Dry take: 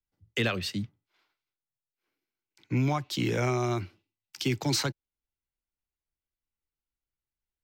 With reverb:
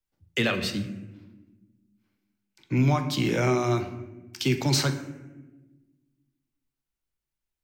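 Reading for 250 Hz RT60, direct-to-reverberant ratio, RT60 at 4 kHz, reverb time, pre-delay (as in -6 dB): 2.0 s, 6.0 dB, 0.70 s, 1.2 s, 3 ms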